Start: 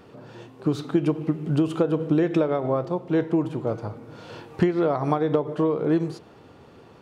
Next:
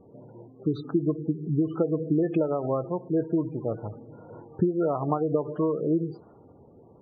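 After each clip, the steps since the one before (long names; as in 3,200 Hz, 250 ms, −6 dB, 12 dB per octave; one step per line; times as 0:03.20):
low-pass that shuts in the quiet parts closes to 720 Hz, open at −18 dBFS
gate on every frequency bin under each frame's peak −20 dB strong
level −3 dB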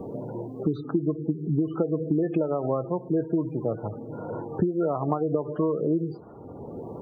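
multiband upward and downward compressor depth 70%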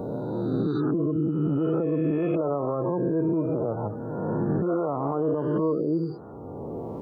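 peak hold with a rise ahead of every peak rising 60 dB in 1.68 s
brickwall limiter −17.5 dBFS, peak gain reduction 8 dB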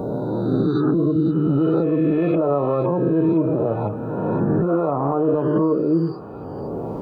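delay with a high-pass on its return 511 ms, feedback 76%, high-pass 1,700 Hz, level −10 dB
on a send at −10 dB: convolution reverb, pre-delay 5 ms
on the sum: level +6 dB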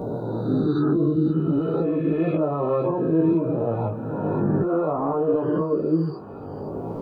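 chorus effect 0.55 Hz, delay 17 ms, depth 3.4 ms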